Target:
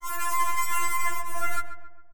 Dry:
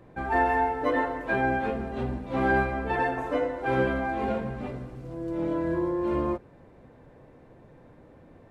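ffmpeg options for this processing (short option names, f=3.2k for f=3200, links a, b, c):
-filter_complex "[0:a]highpass=76,acrusher=bits=4:dc=4:mix=0:aa=0.000001,equalizer=f=250:t=o:w=1:g=8,equalizer=f=500:t=o:w=1:g=7,equalizer=f=1k:t=o:w=1:g=-10,equalizer=f=2k:t=o:w=1:g=10,equalizer=f=4k:t=o:w=1:g=10,acompressor=threshold=-22dB:ratio=6,alimiter=limit=-19.5dB:level=0:latency=1:release=15,dynaudnorm=f=100:g=9:m=5dB,asetrate=175959,aresample=44100,anlmdn=25.1,asplit=2[a][b];[b]adelay=136,lowpass=f=1.6k:p=1,volume=-9dB,asplit=2[c][d];[d]adelay=136,lowpass=f=1.6k:p=1,volume=0.52,asplit=2[e][f];[f]adelay=136,lowpass=f=1.6k:p=1,volume=0.52,asplit=2[g][h];[h]adelay=136,lowpass=f=1.6k:p=1,volume=0.52,asplit=2[i][j];[j]adelay=136,lowpass=f=1.6k:p=1,volume=0.52,asplit=2[k][l];[l]adelay=136,lowpass=f=1.6k:p=1,volume=0.52[m];[c][e][g][i][k][m]amix=inputs=6:normalize=0[n];[a][n]amix=inputs=2:normalize=0,afftfilt=real='re*4*eq(mod(b,16),0)':imag='im*4*eq(mod(b,16),0)':win_size=2048:overlap=0.75"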